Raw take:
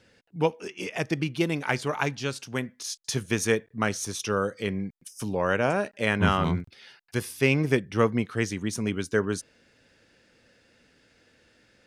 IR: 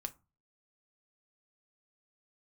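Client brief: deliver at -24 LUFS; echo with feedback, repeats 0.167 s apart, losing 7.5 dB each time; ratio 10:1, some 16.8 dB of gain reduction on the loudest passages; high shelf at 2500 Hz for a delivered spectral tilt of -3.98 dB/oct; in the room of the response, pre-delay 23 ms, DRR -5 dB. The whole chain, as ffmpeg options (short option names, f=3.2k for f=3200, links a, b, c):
-filter_complex "[0:a]highshelf=f=2.5k:g=4,acompressor=threshold=-34dB:ratio=10,aecho=1:1:167|334|501|668|835:0.422|0.177|0.0744|0.0312|0.0131,asplit=2[a][b];[1:a]atrim=start_sample=2205,adelay=23[c];[b][c]afir=irnorm=-1:irlink=0,volume=7dB[d];[a][d]amix=inputs=2:normalize=0,volume=7.5dB"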